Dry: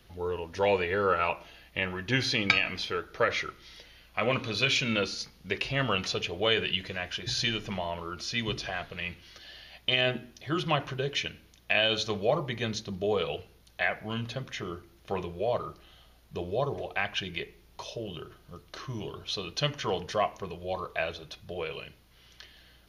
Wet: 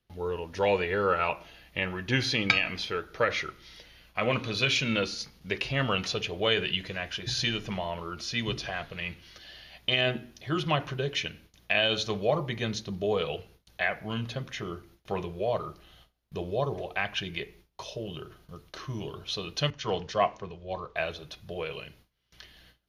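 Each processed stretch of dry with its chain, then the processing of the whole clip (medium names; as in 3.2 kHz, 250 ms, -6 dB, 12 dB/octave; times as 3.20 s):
19.70–20.96 s: low-pass 6.9 kHz 24 dB/octave + three bands expanded up and down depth 70%
whole clip: peaking EQ 150 Hz +2 dB 1.4 oct; gate with hold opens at -45 dBFS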